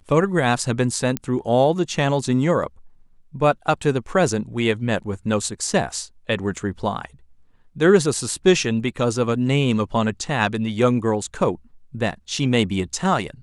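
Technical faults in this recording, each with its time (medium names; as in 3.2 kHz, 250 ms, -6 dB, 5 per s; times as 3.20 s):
1.17 s: pop -9 dBFS
6.56 s: dropout 3.8 ms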